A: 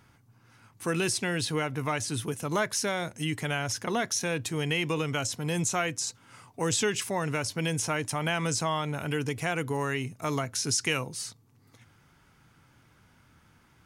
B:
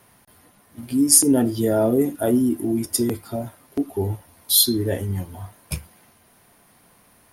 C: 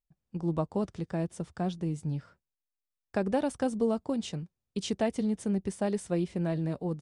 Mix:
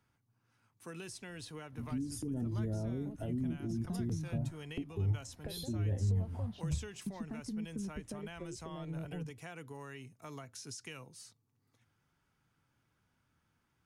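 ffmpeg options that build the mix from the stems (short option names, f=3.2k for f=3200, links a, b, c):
-filter_complex "[0:a]bandreject=f=2.1k:w=26,volume=-16.5dB[a];[1:a]agate=range=-33dB:threshold=-49dB:ratio=3:detection=peak,adelay=1000,volume=-12.5dB[b];[2:a]lowpass=3.9k,acompressor=threshold=-37dB:ratio=6,asplit=2[c][d];[d]afreqshift=0.33[e];[c][e]amix=inputs=2:normalize=1,adelay=2300,volume=-2.5dB[f];[b][f]amix=inputs=2:normalize=0,aemphasis=mode=reproduction:type=bsi,alimiter=limit=-24dB:level=0:latency=1:release=125,volume=0dB[g];[a][g]amix=inputs=2:normalize=0,acrossover=split=200[h][i];[i]acompressor=threshold=-43dB:ratio=5[j];[h][j]amix=inputs=2:normalize=0"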